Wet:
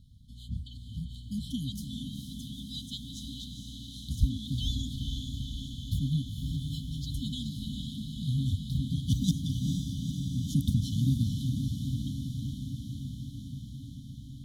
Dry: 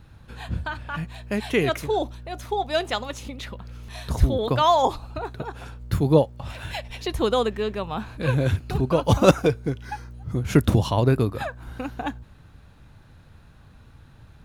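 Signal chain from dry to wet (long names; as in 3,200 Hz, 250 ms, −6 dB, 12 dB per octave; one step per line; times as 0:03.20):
feedback delay with all-pass diffusion 462 ms, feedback 75%, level −4.5 dB
brick-wall band-stop 280–3,000 Hz
level −7 dB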